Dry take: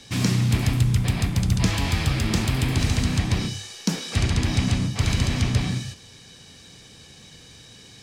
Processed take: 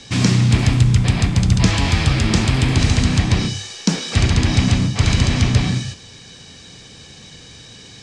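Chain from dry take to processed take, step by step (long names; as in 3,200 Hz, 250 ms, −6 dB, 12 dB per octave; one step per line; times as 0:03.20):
low-pass filter 8,400 Hz 24 dB per octave
level +6.5 dB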